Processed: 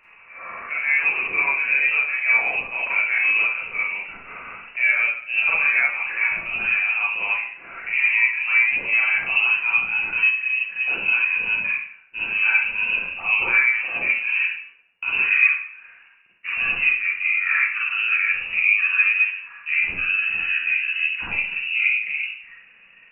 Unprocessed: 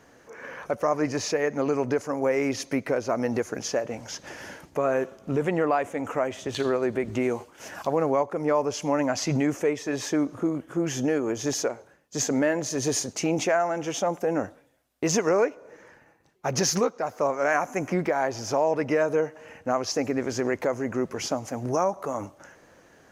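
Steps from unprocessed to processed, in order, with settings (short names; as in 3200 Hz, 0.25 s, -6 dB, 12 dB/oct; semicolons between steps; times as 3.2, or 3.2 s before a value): gliding pitch shift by -10 st starting unshifted; inverted band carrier 2800 Hz; Schroeder reverb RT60 0.54 s, combs from 33 ms, DRR -6.5 dB; gain -1.5 dB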